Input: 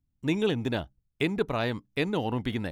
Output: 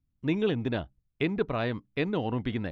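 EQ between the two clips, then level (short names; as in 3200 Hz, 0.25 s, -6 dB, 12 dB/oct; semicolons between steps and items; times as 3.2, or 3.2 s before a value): air absorption 280 m; high shelf 6500 Hz +10.5 dB; notch 860 Hz, Q 12; 0.0 dB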